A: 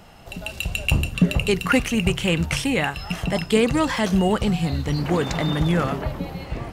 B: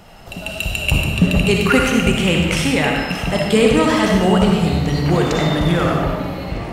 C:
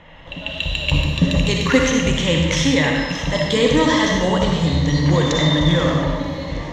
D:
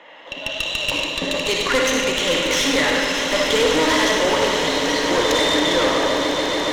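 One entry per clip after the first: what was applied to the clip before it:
comb and all-pass reverb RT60 1.4 s, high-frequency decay 0.75×, pre-delay 20 ms, DRR −0.5 dB; level +3 dB
EQ curve with evenly spaced ripples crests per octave 1.1, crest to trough 11 dB; low-pass filter sweep 2,500 Hz → 5,400 Hz, 0:00.04–0:01.38; level −3 dB
high-pass filter 320 Hz 24 dB per octave; tube saturation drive 19 dB, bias 0.55; on a send: echo that builds up and dies away 143 ms, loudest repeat 8, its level −13 dB; on the sum: level +5 dB

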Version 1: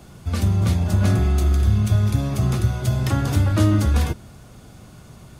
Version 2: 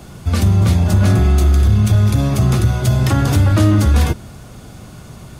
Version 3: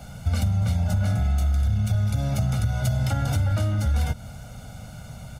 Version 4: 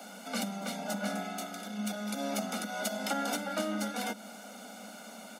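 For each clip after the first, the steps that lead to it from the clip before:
in parallel at +3 dB: brickwall limiter −14.5 dBFS, peak gain reduction 7.5 dB; on the sum: hard clipping −6 dBFS, distortion −28 dB
downward compressor, threshold −17 dBFS, peak gain reduction 8.5 dB; comb filter 1.4 ms, depth 87%; level −7 dB
Butterworth high-pass 200 Hz 96 dB per octave

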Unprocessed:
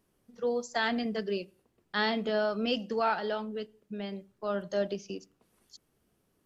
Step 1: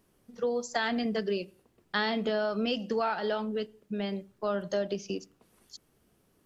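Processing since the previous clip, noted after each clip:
downward compressor 5 to 1, threshold −31 dBFS, peak gain reduction 7.5 dB
level +5 dB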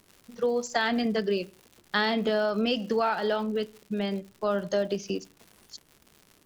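surface crackle 180 per second −44 dBFS
level +3.5 dB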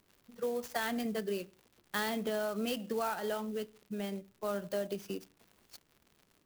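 converter with an unsteady clock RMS 0.031 ms
level −8.5 dB

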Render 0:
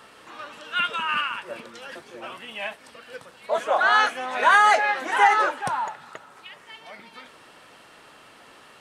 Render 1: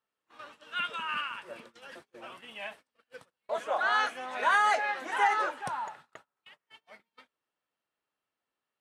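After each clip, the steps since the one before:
noise gate −41 dBFS, range −31 dB
level −8.5 dB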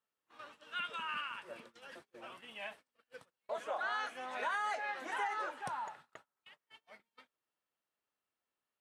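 downward compressor 3 to 1, threshold −31 dBFS, peak gain reduction 8.5 dB
level −4.5 dB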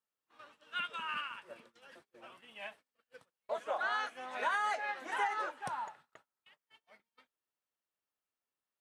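expander for the loud parts 1.5 to 1, over −51 dBFS
level +4 dB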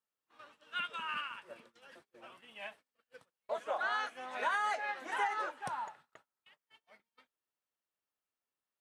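no processing that can be heard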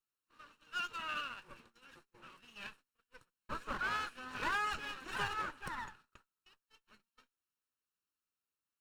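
lower of the sound and its delayed copy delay 0.73 ms
level −1 dB

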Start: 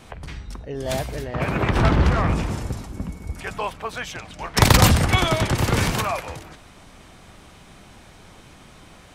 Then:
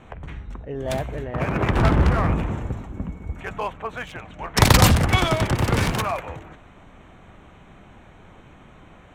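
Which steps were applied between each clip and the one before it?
adaptive Wiener filter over 9 samples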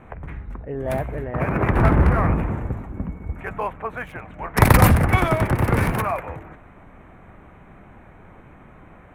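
flat-topped bell 4,800 Hz −13 dB
level +1.5 dB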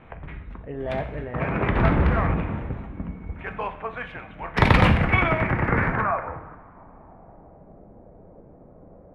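low-pass filter sweep 3,500 Hz → 560 Hz, 0:04.65–0:07.81
coupled-rooms reverb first 0.6 s, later 2.2 s, from −19 dB, DRR 7.5 dB
level −4 dB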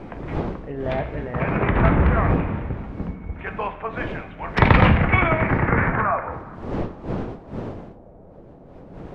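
wind on the microphone 410 Hz −36 dBFS
treble cut that deepens with the level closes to 3,000 Hz, closed at −19 dBFS
level +2.5 dB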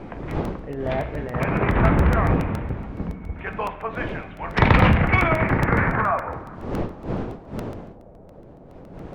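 soft clipping −3.5 dBFS, distortion −24 dB
regular buffer underruns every 0.14 s, samples 64, repeat, from 0:00.31

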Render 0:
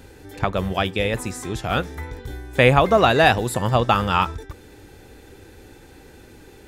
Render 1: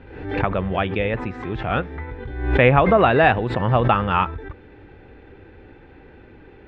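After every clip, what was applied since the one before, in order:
low-pass filter 2,700 Hz 24 dB per octave
background raised ahead of every attack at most 66 dB per second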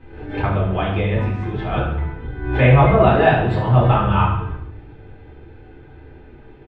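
repeating echo 70 ms, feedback 52%, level −9 dB
convolution reverb RT60 0.50 s, pre-delay 3 ms, DRR −5 dB
level −8.5 dB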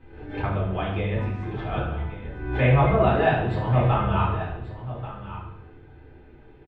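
single-tap delay 1,136 ms −13.5 dB
level −6.5 dB

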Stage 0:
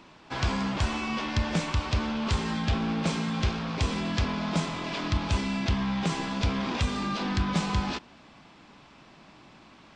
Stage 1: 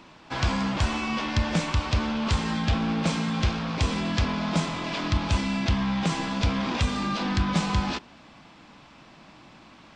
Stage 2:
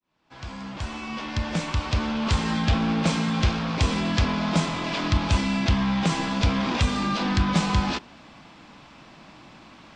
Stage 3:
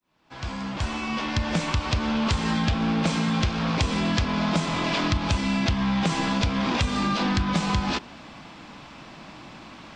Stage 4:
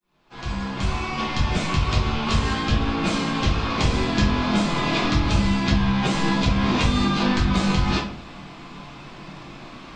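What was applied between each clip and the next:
notch filter 400 Hz, Q 12; level +2.5 dB
fade in at the beginning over 2.56 s; level +2.5 dB
downward compressor, threshold −25 dBFS, peak gain reduction 9 dB; level +4.5 dB
rectangular room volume 47 cubic metres, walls mixed, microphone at 1.3 metres; level −4.5 dB

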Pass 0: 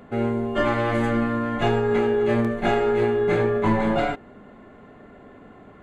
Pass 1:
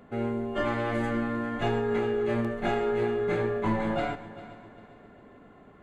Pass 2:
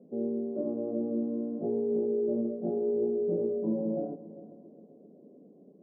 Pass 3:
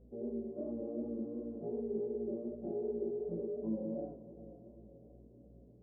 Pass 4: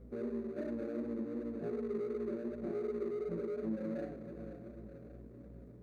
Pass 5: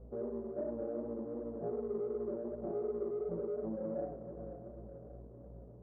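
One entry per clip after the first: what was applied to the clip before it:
echo machine with several playback heads 133 ms, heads first and third, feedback 54%, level −17 dB; level −6.5 dB
elliptic band-pass filter 170–550 Hz, stop band 60 dB
mains hum 60 Hz, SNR 21 dB; feedback delay with all-pass diffusion 485 ms, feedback 52%, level −15 dB; chorus effect 2.7 Hz, delay 17.5 ms, depth 6.6 ms; level −5.5 dB
running median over 41 samples; downward compressor 2 to 1, threshold −46 dBFS, peak gain reduction 8 dB; level +6.5 dB
transistor ladder low-pass 1,000 Hz, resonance 40%; parametric band 260 Hz −8 dB 1.1 octaves; level +10.5 dB

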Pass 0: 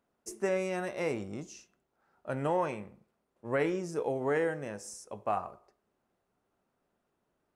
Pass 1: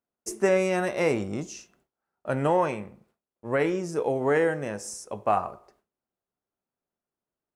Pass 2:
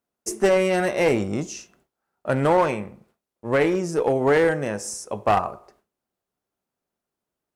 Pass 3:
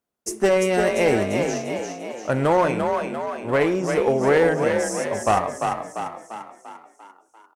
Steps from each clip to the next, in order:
noise gate with hold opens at −59 dBFS; speech leveller within 3 dB 2 s; level +7 dB
asymmetric clip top −22 dBFS; level +5.5 dB
echo with shifted repeats 345 ms, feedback 53%, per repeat +37 Hz, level −5 dB

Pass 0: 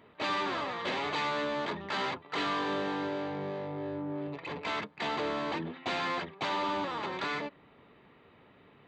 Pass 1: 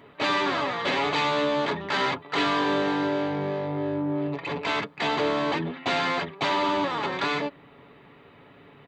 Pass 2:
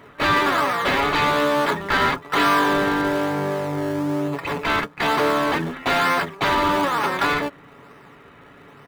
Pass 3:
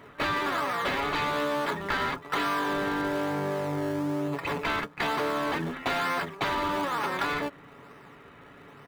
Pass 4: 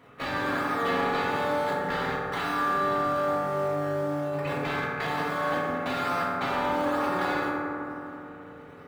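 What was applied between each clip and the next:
comb filter 7.1 ms, depth 36%; level +7 dB
parametric band 1,400 Hz +8 dB 1 octave; in parallel at −10 dB: sample-and-hold swept by an LFO 24×, swing 100% 1.1 Hz; on the sum: level +1.5 dB
downward compressor, threshold −22 dBFS, peak gain reduction 7.5 dB; level −3.5 dB
convolution reverb RT60 3.1 s, pre-delay 3 ms, DRR −7 dB; level −7 dB

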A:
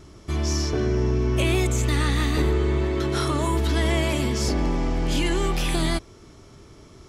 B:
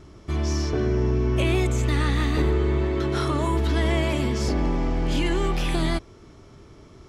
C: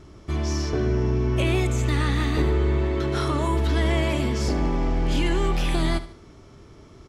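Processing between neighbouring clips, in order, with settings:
high-shelf EQ 5,100 Hz −9.5 dB
repeating echo 74 ms, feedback 40%, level −15 dB

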